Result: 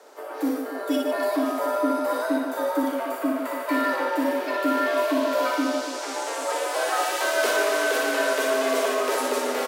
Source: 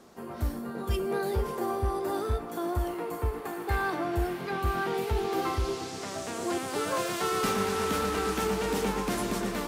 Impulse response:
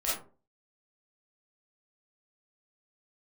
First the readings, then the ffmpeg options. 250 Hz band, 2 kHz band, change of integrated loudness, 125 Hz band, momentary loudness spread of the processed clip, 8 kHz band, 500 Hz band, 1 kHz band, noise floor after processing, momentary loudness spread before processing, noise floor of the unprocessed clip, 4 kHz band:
+6.5 dB, +9.0 dB, +6.0 dB, below −25 dB, 6 LU, +6.0 dB, +7.0 dB, +5.5 dB, −33 dBFS, 6 LU, −39 dBFS, +6.0 dB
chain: -af "afreqshift=210,acontrast=82,aecho=1:1:60|150|285|487.5|791.2:0.631|0.398|0.251|0.158|0.1,volume=-3.5dB"

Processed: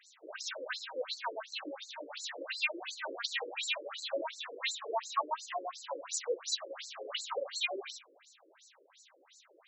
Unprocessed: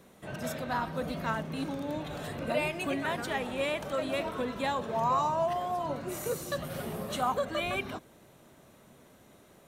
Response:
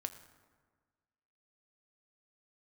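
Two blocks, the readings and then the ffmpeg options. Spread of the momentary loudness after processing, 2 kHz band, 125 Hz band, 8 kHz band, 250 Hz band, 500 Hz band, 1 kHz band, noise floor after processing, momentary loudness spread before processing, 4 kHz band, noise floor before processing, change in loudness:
9 LU, −2.0 dB, below −40 dB, +3.5 dB, −16.5 dB, −7.5 dB, −8.5 dB, −66 dBFS, 8 LU, +4.0 dB, −58 dBFS, −5.0 dB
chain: -filter_complex "[0:a]crystalizer=i=9:c=0,asplit=2[link_01][link_02];[link_02]bass=frequency=250:gain=15,treble=frequency=4000:gain=-6[link_03];[1:a]atrim=start_sample=2205,asetrate=79380,aresample=44100[link_04];[link_03][link_04]afir=irnorm=-1:irlink=0,volume=4.5dB[link_05];[link_01][link_05]amix=inputs=2:normalize=0,afftfilt=real='re*between(b*sr/1024,390*pow(5800/390,0.5+0.5*sin(2*PI*2.8*pts/sr))/1.41,390*pow(5800/390,0.5+0.5*sin(2*PI*2.8*pts/sr))*1.41)':imag='im*between(b*sr/1024,390*pow(5800/390,0.5+0.5*sin(2*PI*2.8*pts/sr))/1.41,390*pow(5800/390,0.5+0.5*sin(2*PI*2.8*pts/sr))*1.41)':win_size=1024:overlap=0.75,volume=-7.5dB"

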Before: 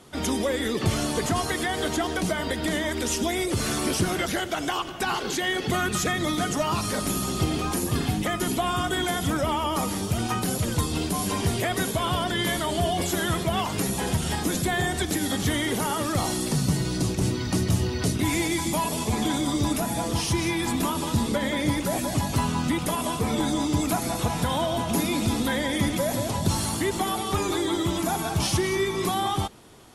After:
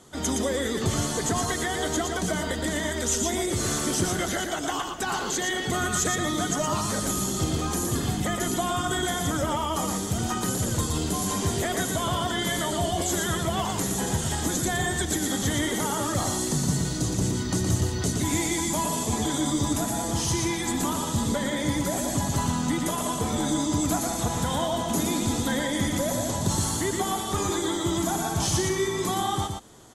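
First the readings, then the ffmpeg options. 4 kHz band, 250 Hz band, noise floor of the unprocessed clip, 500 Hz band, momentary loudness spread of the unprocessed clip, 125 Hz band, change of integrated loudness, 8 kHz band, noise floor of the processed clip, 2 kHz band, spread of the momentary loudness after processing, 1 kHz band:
−1.5 dB, −1.0 dB, −31 dBFS, −1.0 dB, 2 LU, −1.0 dB, −0.5 dB, +3.5 dB, −30 dBFS, −2.0 dB, 2 LU, −1.0 dB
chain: -af "acontrast=44,superequalizer=12b=0.562:15b=2.24,aecho=1:1:117:0.596,volume=-8dB"

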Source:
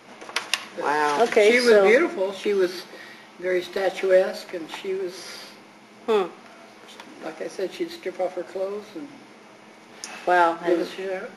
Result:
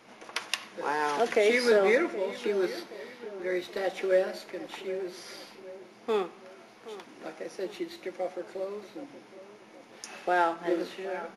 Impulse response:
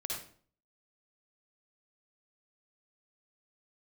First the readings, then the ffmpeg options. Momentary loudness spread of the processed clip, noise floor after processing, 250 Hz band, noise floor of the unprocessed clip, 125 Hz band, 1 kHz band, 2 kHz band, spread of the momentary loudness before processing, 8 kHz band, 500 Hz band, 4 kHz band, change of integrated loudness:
21 LU, −53 dBFS, −7.0 dB, −48 dBFS, can't be measured, −7.0 dB, −7.0 dB, 21 LU, −7.0 dB, −7.0 dB, −7.0 dB, −7.0 dB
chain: -filter_complex "[0:a]asplit=2[link_01][link_02];[link_02]adelay=773,lowpass=frequency=2100:poles=1,volume=-15dB,asplit=2[link_03][link_04];[link_04]adelay=773,lowpass=frequency=2100:poles=1,volume=0.49,asplit=2[link_05][link_06];[link_06]adelay=773,lowpass=frequency=2100:poles=1,volume=0.49,asplit=2[link_07][link_08];[link_08]adelay=773,lowpass=frequency=2100:poles=1,volume=0.49,asplit=2[link_09][link_10];[link_10]adelay=773,lowpass=frequency=2100:poles=1,volume=0.49[link_11];[link_01][link_03][link_05][link_07][link_09][link_11]amix=inputs=6:normalize=0,volume=-7dB"

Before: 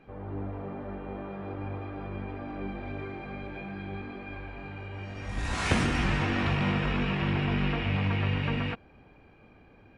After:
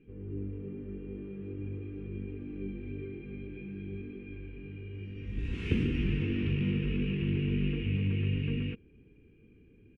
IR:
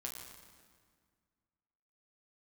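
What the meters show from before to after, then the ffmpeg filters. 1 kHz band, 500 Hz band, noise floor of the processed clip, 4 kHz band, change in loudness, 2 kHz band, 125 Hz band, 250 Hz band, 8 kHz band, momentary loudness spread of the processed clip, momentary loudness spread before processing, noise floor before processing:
−26.0 dB, −4.5 dB, −59 dBFS, −8.5 dB, −3.0 dB, −10.5 dB, −1.5 dB, −1.5 dB, below −20 dB, 13 LU, 13 LU, −56 dBFS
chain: -af "firequalizer=gain_entry='entry(440,0);entry(630,-30);entry(2700,-3);entry(4000,-20);entry(8100,-25)':delay=0.05:min_phase=1,volume=-1.5dB"

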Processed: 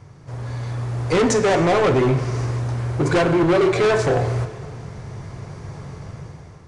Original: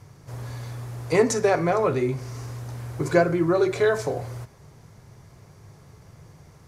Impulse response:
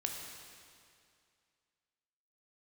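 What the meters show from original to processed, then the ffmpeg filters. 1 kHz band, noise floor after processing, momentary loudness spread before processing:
+5.5 dB, −42 dBFS, 15 LU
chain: -filter_complex "[0:a]aemphasis=mode=reproduction:type=cd,dynaudnorm=framelen=200:gausssize=7:maxgain=10.5dB,volume=18.5dB,asoftclip=hard,volume=-18.5dB,aresample=22050,aresample=44100,asplit=2[link_01][link_02];[1:a]atrim=start_sample=2205[link_03];[link_02][link_03]afir=irnorm=-1:irlink=0,volume=-4.5dB[link_04];[link_01][link_04]amix=inputs=2:normalize=0"

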